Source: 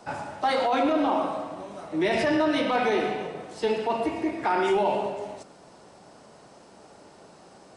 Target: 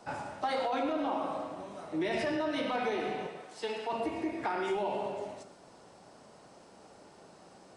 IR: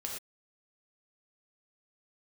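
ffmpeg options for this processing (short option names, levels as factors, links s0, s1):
-filter_complex "[0:a]asettb=1/sr,asplit=3[s0][s1][s2];[s0]atrim=end=3.274[s3];[s1]atrim=start=3.27:end=3.93,asetpts=PTS-STARTPTS,afade=t=in:d=0.004:c=qsin,afade=t=out:st=0.656:d=0.004:c=qsin,lowshelf=f=410:g=-11.5[s4];[s2]atrim=start=3.926[s5];[s3][s4]acrossfade=d=0.004:c1=hsin:c2=qsin[s6];[s6][s5]acrossfade=d=0.004:c1=qsin:c2=hsin,acompressor=threshold=0.0562:ratio=3,asplit=2[s7][s8];[1:a]atrim=start_sample=2205[s9];[s8][s9]afir=irnorm=-1:irlink=0,volume=0.501[s10];[s7][s10]amix=inputs=2:normalize=0,volume=0.422"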